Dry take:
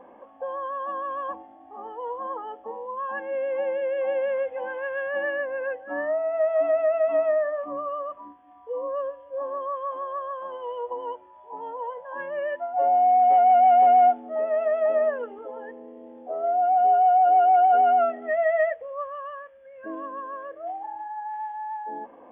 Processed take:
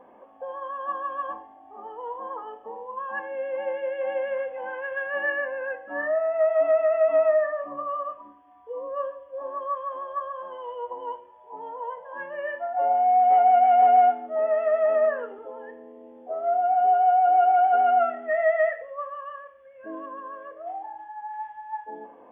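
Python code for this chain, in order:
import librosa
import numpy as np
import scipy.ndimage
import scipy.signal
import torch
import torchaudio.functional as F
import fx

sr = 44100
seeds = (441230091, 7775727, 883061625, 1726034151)

y = fx.rev_fdn(x, sr, rt60_s=0.68, lf_ratio=0.75, hf_ratio=0.95, size_ms=46.0, drr_db=6.0)
y = fx.dynamic_eq(y, sr, hz=1500.0, q=1.1, threshold_db=-36.0, ratio=4.0, max_db=6)
y = F.gain(torch.from_numpy(y), -3.0).numpy()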